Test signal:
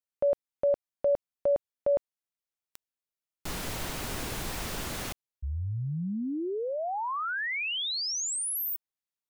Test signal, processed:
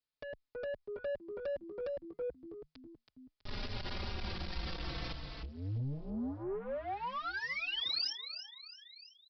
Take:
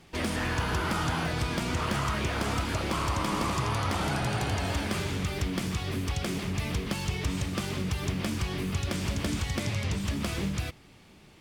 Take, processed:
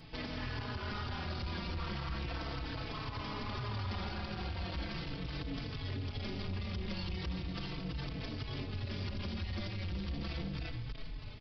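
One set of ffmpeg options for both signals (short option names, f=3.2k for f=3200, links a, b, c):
-filter_complex "[0:a]asplit=5[a][b][c][d][e];[b]adelay=325,afreqshift=-78,volume=-12.5dB[f];[c]adelay=650,afreqshift=-156,volume=-20.2dB[g];[d]adelay=975,afreqshift=-234,volume=-28dB[h];[e]adelay=1300,afreqshift=-312,volume=-35.7dB[i];[a][f][g][h][i]amix=inputs=5:normalize=0,acompressor=threshold=-34dB:ratio=5:attack=7.5:release=177:knee=1:detection=peak,lowshelf=f=120:g=9,aresample=11025,asoftclip=type=tanh:threshold=-36dB,aresample=44100,bass=f=250:g=0,treble=f=4k:g=8,asplit=2[j][k];[k]adelay=4.1,afreqshift=-0.37[l];[j][l]amix=inputs=2:normalize=1,volume=3dB"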